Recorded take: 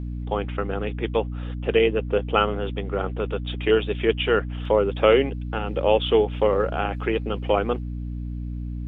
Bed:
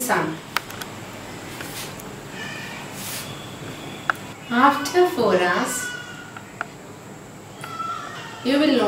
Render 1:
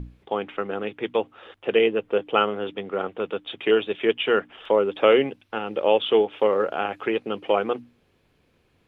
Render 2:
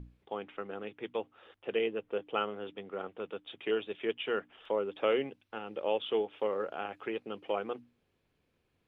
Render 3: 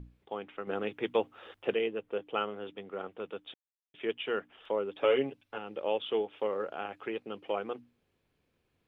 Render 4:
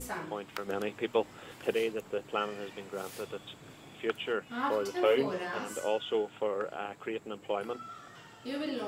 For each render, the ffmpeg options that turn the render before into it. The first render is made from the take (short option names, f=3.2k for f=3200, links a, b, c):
-af "bandreject=f=60:t=h:w=6,bandreject=f=120:t=h:w=6,bandreject=f=180:t=h:w=6,bandreject=f=240:t=h:w=6,bandreject=f=300:t=h:w=6"
-af "volume=-12dB"
-filter_complex "[0:a]asettb=1/sr,asplit=3[a][b][c];[a]atrim=end=0.674[d];[b]atrim=start=0.67:end=1.74,asetpts=PTS-STARTPTS,afade=t=in:d=0.004:c=qsin,afade=t=out:st=1.066:d=0.004:c=qsin,acontrast=83[e];[c]atrim=start=1.736[f];[d][e]acrossfade=d=0.004:c1=hsin:c2=qsin[g];[g][f]acrossfade=d=0.004:c1=qsin:c2=hsin,asettb=1/sr,asplit=3[h][i][j];[h]atrim=end=5.004[k];[i]atrim=start=5:end=5.58,asetpts=PTS-STARTPTS,afade=t=in:d=0.004:c=qsin,afade=t=out:st=0.576:d=0.004:c=qsin,aecho=1:1:7.1:0.69,atrim=end_sample=25578[l];[j]atrim=start=5.576[m];[k][l]acrossfade=d=0.004:c1=hsin:c2=qsin[n];[n][m]acrossfade=d=0.004:c1=qsin:c2=hsin,asplit=3[o][p][q];[o]atrim=end=3.54,asetpts=PTS-STARTPTS,afade=t=out:st=3.536:d=0.004:c=hsin[r];[p]atrim=start=3.54:end=3.94,asetpts=PTS-STARTPTS,volume=0[s];[q]atrim=start=3.94,asetpts=PTS-STARTPTS,afade=t=in:d=0.004:c=hsin[t];[r][s][t]concat=n=3:v=0:a=1"
-filter_complex "[1:a]volume=-17.5dB[a];[0:a][a]amix=inputs=2:normalize=0"